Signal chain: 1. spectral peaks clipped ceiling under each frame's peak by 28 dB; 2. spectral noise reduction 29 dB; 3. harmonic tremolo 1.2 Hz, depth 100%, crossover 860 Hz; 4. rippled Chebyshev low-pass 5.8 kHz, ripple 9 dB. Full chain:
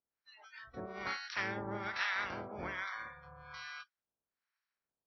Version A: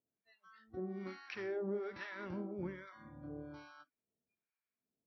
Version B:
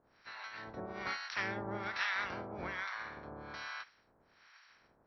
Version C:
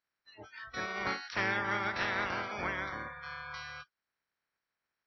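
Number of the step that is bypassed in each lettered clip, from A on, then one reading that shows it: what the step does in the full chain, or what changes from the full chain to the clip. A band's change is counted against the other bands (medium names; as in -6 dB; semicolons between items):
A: 1, 500 Hz band +15.5 dB; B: 2, momentary loudness spread change -6 LU; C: 3, momentary loudness spread change -3 LU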